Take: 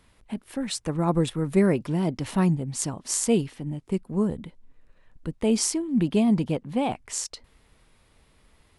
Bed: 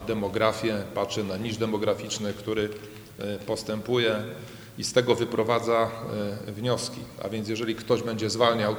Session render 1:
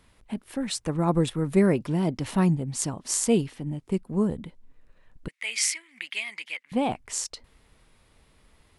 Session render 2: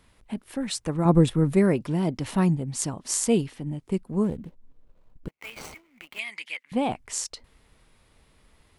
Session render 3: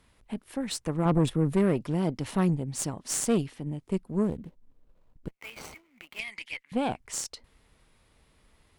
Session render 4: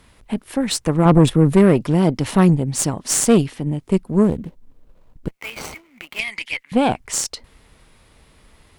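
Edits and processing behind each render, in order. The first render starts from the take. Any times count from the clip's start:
5.28–6.72 s: resonant high-pass 2.1 kHz, resonance Q 6.8
1.05–1.54 s: bass shelf 480 Hz +7 dB; 4.24–6.19 s: median filter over 25 samples
valve stage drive 18 dB, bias 0.6
trim +11.5 dB; peak limiter -3 dBFS, peak gain reduction 1 dB

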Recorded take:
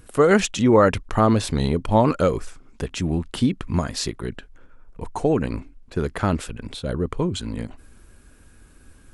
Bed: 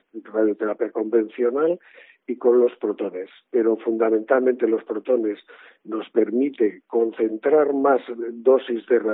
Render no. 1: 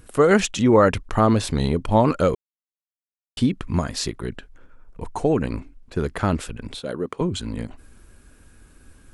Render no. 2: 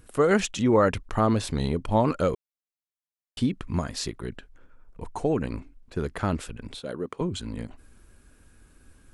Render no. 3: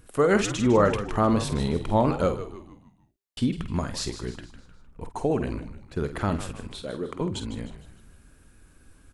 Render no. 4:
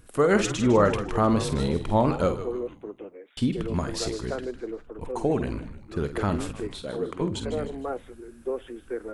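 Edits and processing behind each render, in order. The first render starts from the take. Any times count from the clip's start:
2.35–3.37 s: mute; 6.80–7.21 s: high-pass 240 Hz
trim -5 dB
doubling 49 ms -10 dB; frequency-shifting echo 153 ms, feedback 45%, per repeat -80 Hz, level -12 dB
add bed -14.5 dB

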